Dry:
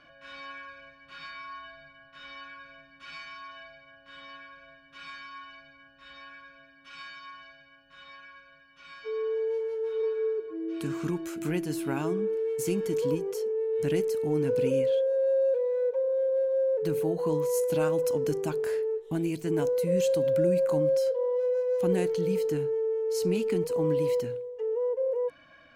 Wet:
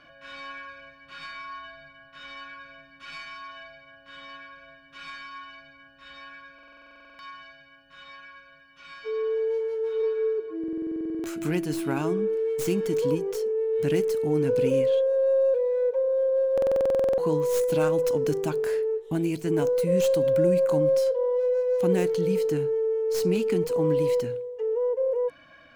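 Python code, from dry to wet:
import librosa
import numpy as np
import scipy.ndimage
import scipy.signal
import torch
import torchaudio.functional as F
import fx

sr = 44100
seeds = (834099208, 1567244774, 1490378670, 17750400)

y = fx.tracing_dist(x, sr, depth_ms=0.1)
y = fx.buffer_glitch(y, sr, at_s=(6.54, 10.59, 16.53), block=2048, repeats=13)
y = F.gain(torch.from_numpy(y), 3.0).numpy()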